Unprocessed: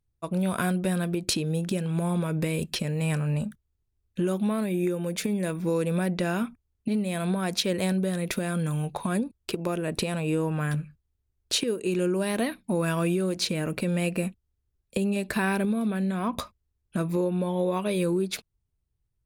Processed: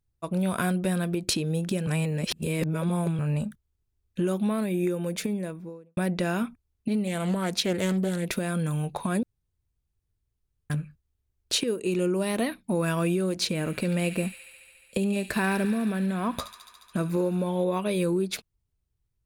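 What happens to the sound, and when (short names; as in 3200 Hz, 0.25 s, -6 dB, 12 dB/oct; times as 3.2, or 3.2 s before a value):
1.87–3.19 reverse
5.07–5.97 studio fade out
7.07–8.32 Doppler distortion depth 0.28 ms
9.23–10.7 room tone
11.79–12.46 notch 1600 Hz
13.51–17.64 thin delay 71 ms, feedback 82%, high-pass 1900 Hz, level -10 dB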